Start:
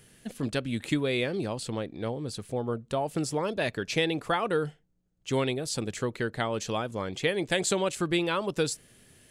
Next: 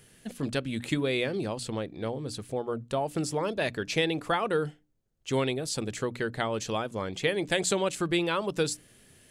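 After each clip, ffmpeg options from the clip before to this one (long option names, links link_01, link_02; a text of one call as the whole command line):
ffmpeg -i in.wav -af "bandreject=frequency=60:width_type=h:width=6,bandreject=frequency=120:width_type=h:width=6,bandreject=frequency=180:width_type=h:width=6,bandreject=frequency=240:width_type=h:width=6,bandreject=frequency=300:width_type=h:width=6" out.wav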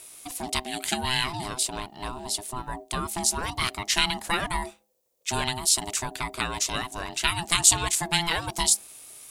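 ffmpeg -i in.wav -af "crystalizer=i=6.5:c=0,aeval=exprs='val(0)*sin(2*PI*510*n/s)':channel_layout=same" out.wav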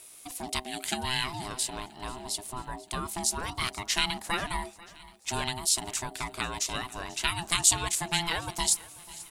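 ffmpeg -i in.wav -af "aecho=1:1:489|978|1467|1956:0.0944|0.0538|0.0307|0.0175,volume=-4dB" out.wav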